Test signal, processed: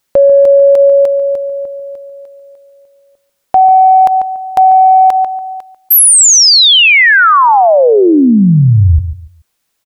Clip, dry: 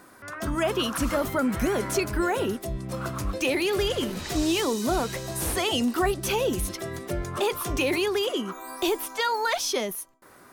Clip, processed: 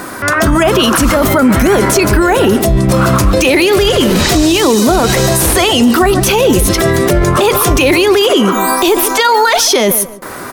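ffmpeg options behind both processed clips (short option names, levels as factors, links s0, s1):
-filter_complex "[0:a]acompressor=threshold=0.0631:ratio=6,asplit=2[s0][s1];[s1]adelay=143,lowpass=f=1400:p=1,volume=0.224,asplit=2[s2][s3];[s3]adelay=143,lowpass=f=1400:p=1,volume=0.24,asplit=2[s4][s5];[s5]adelay=143,lowpass=f=1400:p=1,volume=0.24[s6];[s2][s4][s6]amix=inputs=3:normalize=0[s7];[s0][s7]amix=inputs=2:normalize=0,acontrast=53,alimiter=level_in=11.9:limit=0.891:release=50:level=0:latency=1,volume=0.891"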